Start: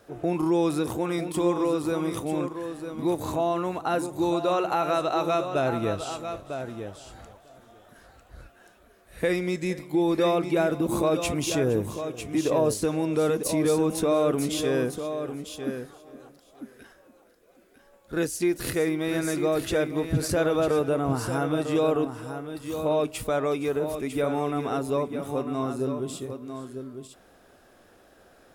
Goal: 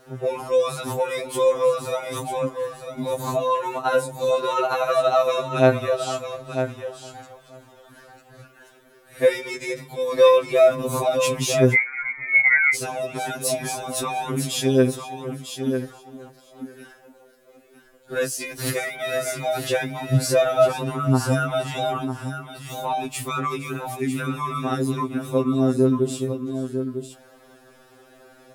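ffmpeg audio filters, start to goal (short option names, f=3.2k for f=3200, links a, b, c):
-filter_complex "[0:a]lowshelf=f=84:g=-5.5,asettb=1/sr,asplit=3[a][b][c];[a]atrim=end=11.744[d];[b]atrim=start=11.74:end=12.75,asetpts=PTS-STARTPTS,afade=t=in:d=0.004:c=qsin,afade=t=out:st=1.006:d=0.004:c=qsin,lowpass=f=2.1k:t=q:w=0.5098,lowpass=f=2.1k:t=q:w=0.6013,lowpass=f=2.1k:t=q:w=0.9,lowpass=f=2.1k:t=q:w=2.563,afreqshift=-2500[e];[c]atrim=start=12.746[f];[d][e]acrossfade=d=0.004:c1=hsin:c2=qsin[g];[g][f]acrossfade=d=0.004:c1=qsin:c2=hsin,afftfilt=real='re*2.45*eq(mod(b,6),0)':imag='im*2.45*eq(mod(b,6),0)':win_size=2048:overlap=0.75,volume=7.5dB"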